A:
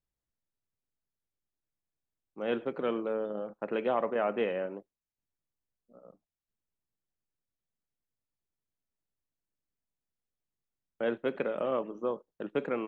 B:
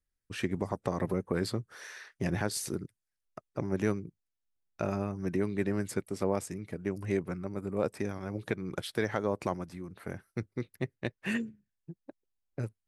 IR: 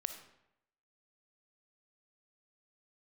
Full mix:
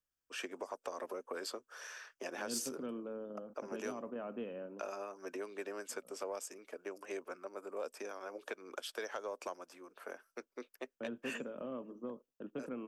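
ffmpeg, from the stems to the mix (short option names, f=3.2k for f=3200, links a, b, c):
-filter_complex "[0:a]volume=-10dB[a];[1:a]highpass=f=500:w=0.5412,highpass=f=500:w=1.3066,volume=1.5dB[b];[a][b]amix=inputs=2:normalize=0,equalizer=f=250:t=o:w=0.33:g=10,equalizer=f=800:t=o:w=0.33:g=-5,equalizer=f=2k:t=o:w=0.33:g=-11,equalizer=f=4k:t=o:w=0.33:g=-10,equalizer=f=10k:t=o:w=0.33:g=-12,acrossover=split=200|3000[c][d][e];[d]acompressor=threshold=-40dB:ratio=3[f];[c][f][e]amix=inputs=3:normalize=0,asoftclip=type=tanh:threshold=-26.5dB"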